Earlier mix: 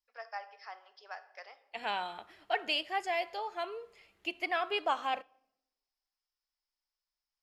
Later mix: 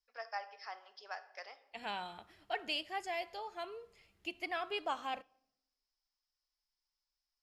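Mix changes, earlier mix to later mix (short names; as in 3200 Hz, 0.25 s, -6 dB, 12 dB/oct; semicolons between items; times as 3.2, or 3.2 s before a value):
second voice -6.5 dB; master: add tone controls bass +11 dB, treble +5 dB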